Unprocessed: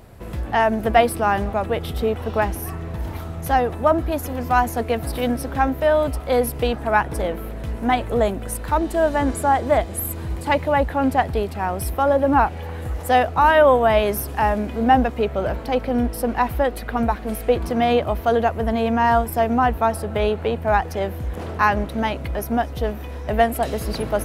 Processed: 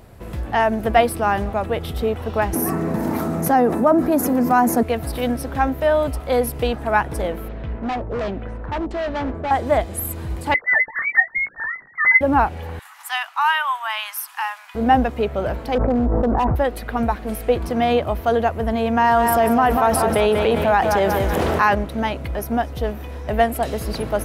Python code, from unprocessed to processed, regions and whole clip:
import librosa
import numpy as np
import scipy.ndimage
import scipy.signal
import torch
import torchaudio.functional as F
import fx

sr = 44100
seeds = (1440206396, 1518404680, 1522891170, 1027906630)

y = fx.chain(x, sr, fx.highpass_res(hz=220.0, q=2.4),
    fx.peak_eq(hz=3200.0, db=-10.5, octaves=0.92),
    fx.env_flatten(amount_pct=50), at=(2.53, 4.83))
y = fx.chain(y, sr, fx.filter_lfo_lowpass(shape='saw_down', hz=1.4, low_hz=530.0, high_hz=5600.0, q=0.93),
    fx.clip_hard(threshold_db=-21.5),
    fx.air_absorb(metres=83.0), at=(7.48, 9.51))
y = fx.chain(y, sr, fx.sine_speech(),
    fx.doubler(ms=18.0, db=-9.0),
    fx.freq_invert(carrier_hz=2600), at=(10.54, 12.21))
y = fx.chain(y, sr, fx.steep_highpass(hz=920.0, slope=48),
    fx.dynamic_eq(hz=2900.0, q=6.8, threshold_db=-44.0, ratio=4.0, max_db=6), at=(12.79, 14.75))
y = fx.chain(y, sr, fx.lowpass(hz=1200.0, slope=24),
    fx.overload_stage(gain_db=15.0),
    fx.env_flatten(amount_pct=100), at=(15.75, 16.56))
y = fx.chain(y, sr, fx.low_shelf(hz=110.0, db=-11.0),
    fx.echo_feedback(ms=189, feedback_pct=41, wet_db=-9.5),
    fx.env_flatten(amount_pct=70), at=(18.97, 21.75))